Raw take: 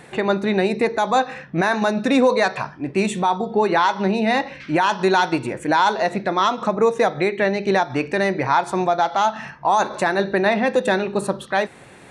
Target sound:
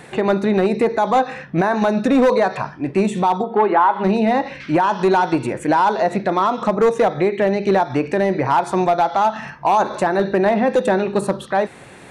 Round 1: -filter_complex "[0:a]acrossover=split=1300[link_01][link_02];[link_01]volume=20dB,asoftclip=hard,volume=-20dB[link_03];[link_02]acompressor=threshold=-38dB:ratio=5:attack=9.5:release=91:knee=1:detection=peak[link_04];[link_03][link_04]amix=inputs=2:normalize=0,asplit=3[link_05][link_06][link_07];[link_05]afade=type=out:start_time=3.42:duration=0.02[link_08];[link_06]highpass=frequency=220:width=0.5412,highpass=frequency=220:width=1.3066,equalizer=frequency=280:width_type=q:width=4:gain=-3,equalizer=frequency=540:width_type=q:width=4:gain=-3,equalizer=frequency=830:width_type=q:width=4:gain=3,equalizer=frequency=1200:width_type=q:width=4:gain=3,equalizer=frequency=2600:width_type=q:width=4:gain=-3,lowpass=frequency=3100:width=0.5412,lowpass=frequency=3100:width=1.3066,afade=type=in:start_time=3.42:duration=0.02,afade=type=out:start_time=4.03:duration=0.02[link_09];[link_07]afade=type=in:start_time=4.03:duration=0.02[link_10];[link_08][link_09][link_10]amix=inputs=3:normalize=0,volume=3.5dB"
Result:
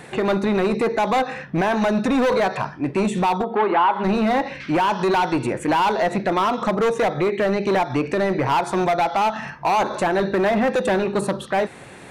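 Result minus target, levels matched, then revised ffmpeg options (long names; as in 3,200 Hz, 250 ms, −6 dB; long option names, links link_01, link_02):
gain into a clipping stage and back: distortion +10 dB
-filter_complex "[0:a]acrossover=split=1300[link_01][link_02];[link_01]volume=13.5dB,asoftclip=hard,volume=-13.5dB[link_03];[link_02]acompressor=threshold=-38dB:ratio=5:attack=9.5:release=91:knee=1:detection=peak[link_04];[link_03][link_04]amix=inputs=2:normalize=0,asplit=3[link_05][link_06][link_07];[link_05]afade=type=out:start_time=3.42:duration=0.02[link_08];[link_06]highpass=frequency=220:width=0.5412,highpass=frequency=220:width=1.3066,equalizer=frequency=280:width_type=q:width=4:gain=-3,equalizer=frequency=540:width_type=q:width=4:gain=-3,equalizer=frequency=830:width_type=q:width=4:gain=3,equalizer=frequency=1200:width_type=q:width=4:gain=3,equalizer=frequency=2600:width_type=q:width=4:gain=-3,lowpass=frequency=3100:width=0.5412,lowpass=frequency=3100:width=1.3066,afade=type=in:start_time=3.42:duration=0.02,afade=type=out:start_time=4.03:duration=0.02[link_09];[link_07]afade=type=in:start_time=4.03:duration=0.02[link_10];[link_08][link_09][link_10]amix=inputs=3:normalize=0,volume=3.5dB"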